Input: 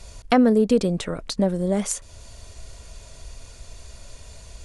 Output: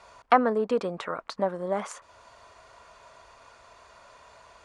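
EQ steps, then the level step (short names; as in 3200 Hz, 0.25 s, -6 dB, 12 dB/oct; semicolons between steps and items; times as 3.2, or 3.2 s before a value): band-pass 1100 Hz, Q 2.2; +7.5 dB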